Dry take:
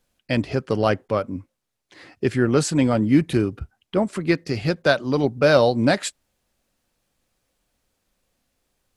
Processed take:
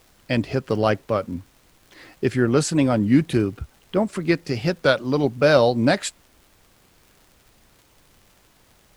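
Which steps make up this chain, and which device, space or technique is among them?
warped LP (warped record 33 1/3 rpm, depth 100 cents; crackle; pink noise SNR 34 dB)

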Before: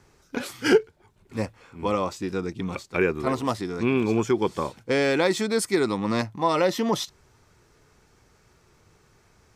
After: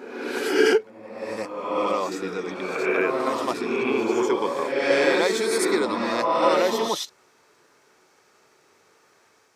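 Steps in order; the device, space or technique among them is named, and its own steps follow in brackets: ghost voice (reverse; reverberation RT60 1.3 s, pre-delay 63 ms, DRR -1 dB; reverse; high-pass 380 Hz 12 dB/octave)

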